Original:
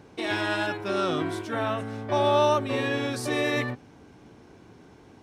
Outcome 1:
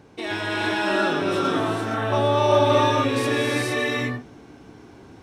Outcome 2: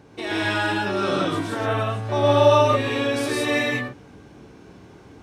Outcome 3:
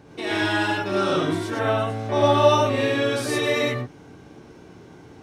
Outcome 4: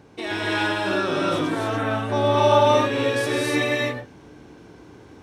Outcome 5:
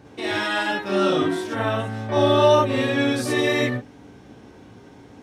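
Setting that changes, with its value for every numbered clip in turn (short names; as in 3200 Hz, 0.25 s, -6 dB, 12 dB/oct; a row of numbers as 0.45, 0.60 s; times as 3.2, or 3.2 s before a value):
non-linear reverb, gate: 490, 200, 130, 320, 80 ms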